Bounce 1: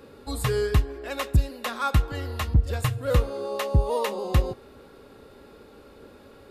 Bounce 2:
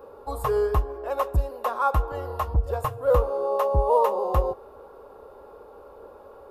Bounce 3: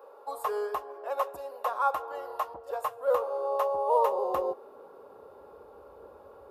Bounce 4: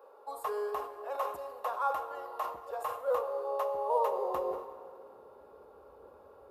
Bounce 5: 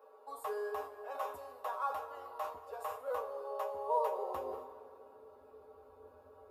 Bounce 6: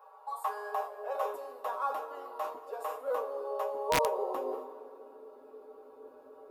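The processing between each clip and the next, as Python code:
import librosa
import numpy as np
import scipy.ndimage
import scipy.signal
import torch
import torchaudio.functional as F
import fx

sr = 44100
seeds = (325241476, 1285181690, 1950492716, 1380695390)

y1 = fx.graphic_eq(x, sr, hz=(125, 250, 500, 1000, 2000, 4000, 8000), db=(-9, -10, 7, 11, -11, -10, -9))
y2 = fx.filter_sweep_highpass(y1, sr, from_hz=600.0, to_hz=67.0, start_s=3.91, end_s=5.69, q=1.1)
y2 = y2 * librosa.db_to_amplitude(-4.5)
y3 = fx.rev_plate(y2, sr, seeds[0], rt60_s=2.3, hf_ratio=0.8, predelay_ms=0, drr_db=9.0)
y3 = fx.sustainer(y3, sr, db_per_s=90.0)
y3 = y3 * librosa.db_to_amplitude(-5.0)
y4 = fx.comb_fb(y3, sr, f0_hz=87.0, decay_s=0.17, harmonics='odd', damping=0.0, mix_pct=90)
y4 = y4 * librosa.db_to_amplitude(5.0)
y5 = fx.filter_sweep_highpass(y4, sr, from_hz=860.0, to_hz=290.0, start_s=0.56, end_s=1.65, q=2.4)
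y5 = (np.mod(10.0 ** (21.5 / 20.0) * y5 + 1.0, 2.0) - 1.0) / 10.0 ** (21.5 / 20.0)
y5 = y5 * librosa.db_to_amplitude(2.5)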